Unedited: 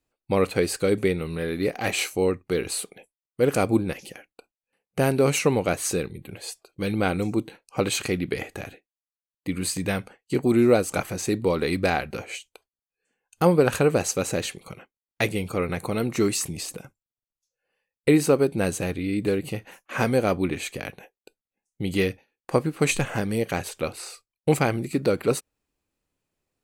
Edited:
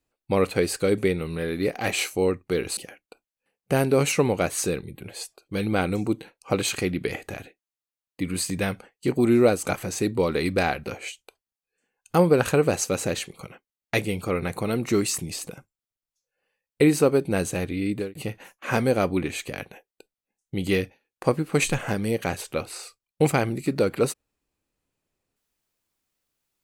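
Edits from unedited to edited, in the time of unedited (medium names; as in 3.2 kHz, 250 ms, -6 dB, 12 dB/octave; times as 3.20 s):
2.77–4.04 s: delete
19.17–19.42 s: fade out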